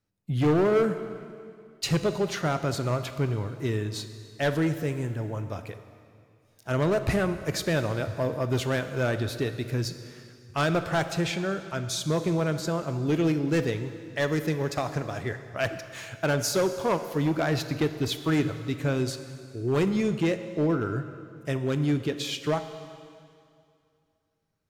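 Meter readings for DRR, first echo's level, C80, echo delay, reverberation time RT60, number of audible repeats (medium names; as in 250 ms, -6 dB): 9.5 dB, no echo, 11.5 dB, no echo, 2.4 s, no echo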